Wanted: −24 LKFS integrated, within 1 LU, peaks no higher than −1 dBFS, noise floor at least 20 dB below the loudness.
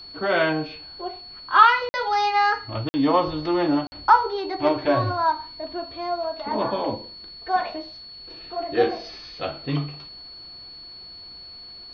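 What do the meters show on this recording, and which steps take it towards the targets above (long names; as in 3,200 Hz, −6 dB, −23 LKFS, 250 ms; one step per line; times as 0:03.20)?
number of dropouts 3; longest dropout 50 ms; interfering tone 4,400 Hz; level of the tone −39 dBFS; integrated loudness −23.0 LKFS; sample peak −1.5 dBFS; target loudness −24.0 LKFS
→ repair the gap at 0:01.89/0:02.89/0:03.87, 50 ms
notch filter 4,400 Hz, Q 30
level −1 dB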